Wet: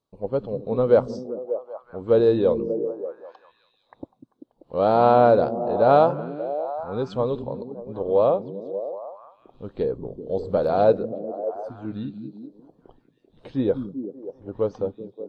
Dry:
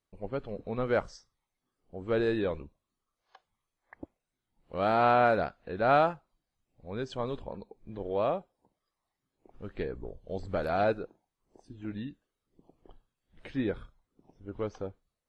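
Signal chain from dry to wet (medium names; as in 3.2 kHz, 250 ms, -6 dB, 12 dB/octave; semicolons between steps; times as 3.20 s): ten-band graphic EQ 125 Hz +10 dB, 250 Hz +7 dB, 500 Hz +9 dB, 1 kHz +10 dB, 2 kHz -8 dB, 4 kHz +9 dB; repeats whose band climbs or falls 194 ms, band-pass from 180 Hz, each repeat 0.7 oct, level -3.5 dB; dynamic bell 490 Hz, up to +5 dB, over -29 dBFS, Q 2.4; trim -4 dB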